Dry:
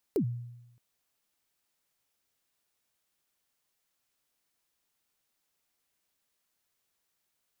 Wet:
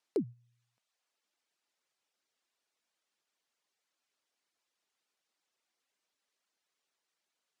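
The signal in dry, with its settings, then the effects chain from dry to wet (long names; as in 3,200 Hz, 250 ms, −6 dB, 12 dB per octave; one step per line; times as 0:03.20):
synth kick length 0.62 s, from 470 Hz, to 120 Hz, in 87 ms, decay 0.95 s, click on, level −22 dB
low-pass filter 6,800 Hz 12 dB per octave
reverb reduction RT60 0.68 s
high-pass filter 270 Hz 12 dB per octave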